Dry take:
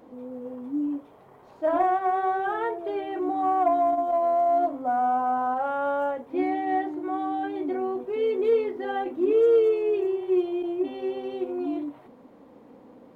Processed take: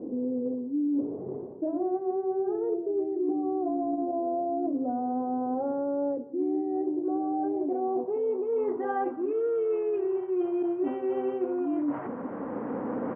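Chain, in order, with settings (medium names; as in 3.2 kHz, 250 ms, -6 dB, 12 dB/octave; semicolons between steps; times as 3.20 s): recorder AGC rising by 5.2 dB/s; high-pass 74 Hz; bass shelf 500 Hz +6.5 dB; low-pass sweep 380 Hz -> 1.5 kHz, 6.59–9.32 s; bass shelf 110 Hz -6.5 dB; reverse; compression 12:1, threshold -33 dBFS, peak gain reduction 22.5 dB; reverse; steep low-pass 3.2 kHz 96 dB/octave; on a send: delay 177 ms -19.5 dB; on the sum: trim +7 dB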